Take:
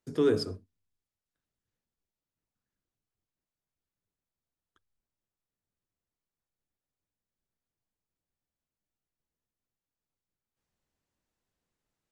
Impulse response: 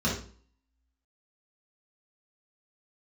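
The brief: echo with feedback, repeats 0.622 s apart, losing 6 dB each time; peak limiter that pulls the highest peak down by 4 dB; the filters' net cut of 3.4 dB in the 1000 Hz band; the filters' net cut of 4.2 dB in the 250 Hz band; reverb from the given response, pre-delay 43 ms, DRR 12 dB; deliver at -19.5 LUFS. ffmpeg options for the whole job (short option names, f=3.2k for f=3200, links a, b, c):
-filter_complex "[0:a]equalizer=f=250:t=o:g=-5,equalizer=f=1k:t=o:g=-4.5,alimiter=limit=-21.5dB:level=0:latency=1,aecho=1:1:622|1244|1866|2488|3110|3732:0.501|0.251|0.125|0.0626|0.0313|0.0157,asplit=2[a][b];[1:a]atrim=start_sample=2205,adelay=43[c];[b][c]afir=irnorm=-1:irlink=0,volume=-22.5dB[d];[a][d]amix=inputs=2:normalize=0,volume=17.5dB"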